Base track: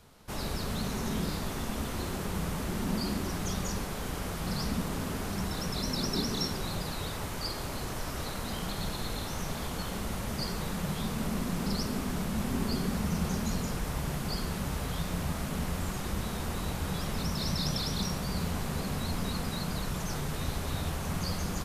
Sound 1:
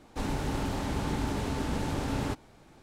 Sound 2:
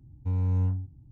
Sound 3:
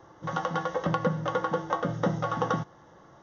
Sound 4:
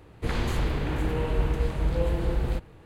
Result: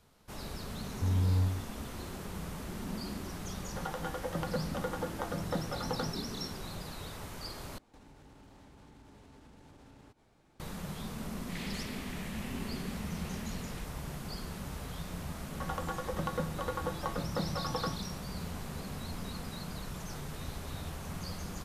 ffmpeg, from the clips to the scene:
ffmpeg -i bed.wav -i cue0.wav -i cue1.wav -i cue2.wav -i cue3.wav -filter_complex "[3:a]asplit=2[link_01][link_02];[0:a]volume=-7.5dB[link_03];[link_01]bandreject=frequency=1100:width=9.6[link_04];[1:a]acompressor=threshold=-43dB:ratio=6:attack=3.2:release=140:knee=1:detection=peak[link_05];[4:a]asuperpass=centerf=4900:order=20:qfactor=0.5[link_06];[link_03]asplit=2[link_07][link_08];[link_07]atrim=end=7.784[link_09];[link_05]atrim=end=2.82,asetpts=PTS-STARTPTS,volume=-10.5dB[link_10];[link_08]atrim=start=10.596[link_11];[2:a]atrim=end=1.11,asetpts=PTS-STARTPTS,volume=-2.5dB,afade=type=in:duration=0.004:curve=hsin,afade=type=out:start_time=1.106:duration=0.004:curve=hsin,adelay=760[link_12];[link_04]atrim=end=3.22,asetpts=PTS-STARTPTS,volume=-8dB,afade=type=in:duration=0.004:curve=hsin,afade=type=out:start_time=3.216:duration=0.004:curve=hsin,adelay=153909S[link_13];[link_06]atrim=end=2.85,asetpts=PTS-STARTPTS,volume=-6dB,afade=type=in:duration=0.004:curve=hsin,afade=type=out:start_time=2.846:duration=0.004:curve=hsin,adelay=11260[link_14];[link_02]atrim=end=3.22,asetpts=PTS-STARTPTS,volume=-8.5dB,afade=type=in:duration=0.004:curve=hsin,afade=type=out:start_time=3.216:duration=0.004:curve=hsin,adelay=15330[link_15];[link_09][link_10]acrossfade=duration=0.004:curve1=hsin:curve2=hsin[link_16];[link_16][link_11]acrossfade=duration=0.004:curve1=hsin:curve2=hsin[link_17];[link_17][link_12][link_13][link_14][link_15]amix=inputs=5:normalize=0" out.wav

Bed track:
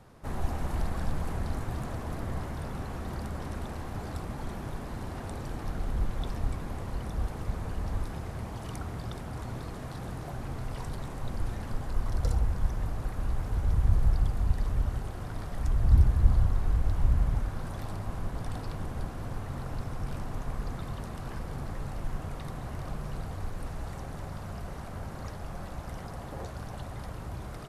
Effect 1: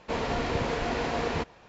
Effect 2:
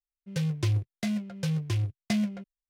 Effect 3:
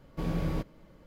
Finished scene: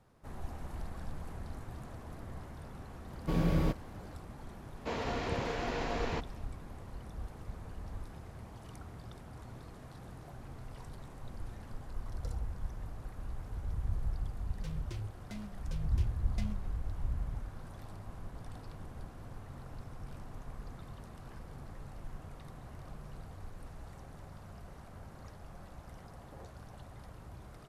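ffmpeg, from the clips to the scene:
ffmpeg -i bed.wav -i cue0.wav -i cue1.wav -i cue2.wav -filter_complex "[0:a]volume=-11dB[link_01];[3:a]acontrast=84,atrim=end=1.06,asetpts=PTS-STARTPTS,volume=-5.5dB,afade=type=in:duration=0.004:curve=hsin,afade=type=out:start_time=1.056:duration=0.004:curve=hsin,adelay=3100[link_02];[1:a]atrim=end=1.68,asetpts=PTS-STARTPTS,volume=-6.5dB,afade=type=in:duration=0.004:curve=hsin,afade=type=out:start_time=1.676:duration=0.004:curve=hsin,adelay=210357S[link_03];[2:a]atrim=end=2.69,asetpts=PTS-STARTPTS,volume=-15.5dB,afade=type=in:duration=0.004:curve=hsin,afade=type=out:start_time=2.686:duration=0.004:curve=hsin,adelay=629748S[link_04];[link_01][link_02][link_03][link_04]amix=inputs=4:normalize=0" out.wav

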